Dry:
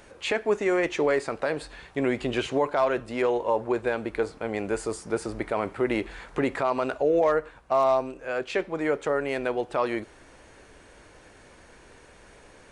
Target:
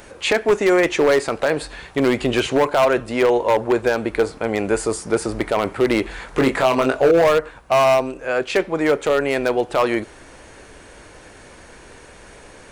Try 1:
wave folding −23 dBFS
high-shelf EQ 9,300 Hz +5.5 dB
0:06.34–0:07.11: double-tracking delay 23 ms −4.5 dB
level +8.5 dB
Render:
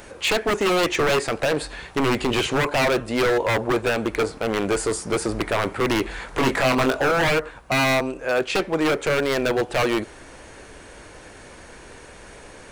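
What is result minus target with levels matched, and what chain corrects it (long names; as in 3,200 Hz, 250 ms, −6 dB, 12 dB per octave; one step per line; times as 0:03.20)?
wave folding: distortion +16 dB
wave folding −17 dBFS
high-shelf EQ 9,300 Hz +5.5 dB
0:06.34–0:07.11: double-tracking delay 23 ms −4.5 dB
level +8.5 dB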